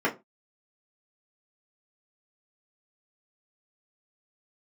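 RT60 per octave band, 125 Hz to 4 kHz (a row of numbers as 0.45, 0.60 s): 0.30, 0.25, 0.25, 0.25, 0.20, 0.15 s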